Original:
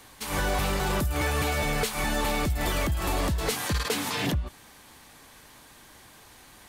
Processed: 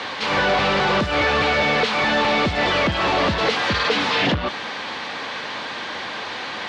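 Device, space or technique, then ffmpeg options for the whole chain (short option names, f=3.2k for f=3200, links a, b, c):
overdrive pedal into a guitar cabinet: -filter_complex "[0:a]asplit=2[a][b];[b]highpass=f=720:p=1,volume=29dB,asoftclip=type=tanh:threshold=-17.5dB[c];[a][c]amix=inputs=2:normalize=0,lowpass=f=7.5k:p=1,volume=-6dB,highpass=88,equalizer=f=91:t=q:w=4:g=4,equalizer=f=210:t=q:w=4:g=5,equalizer=f=510:t=q:w=4:g=5,lowpass=f=4.4k:w=0.5412,lowpass=f=4.4k:w=1.3066,volume=4dB"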